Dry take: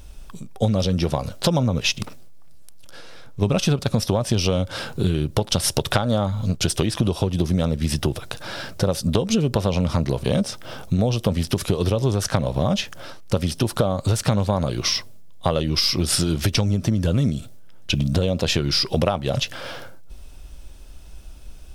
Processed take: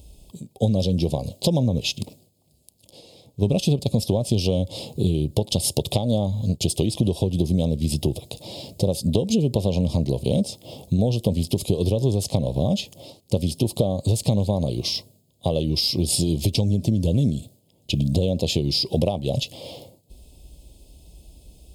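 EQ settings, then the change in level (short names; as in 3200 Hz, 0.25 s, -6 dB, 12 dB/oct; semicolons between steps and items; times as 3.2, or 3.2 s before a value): HPF 53 Hz; Butterworth band-stop 1500 Hz, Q 0.56; notch 5800 Hz, Q 5.5; 0.0 dB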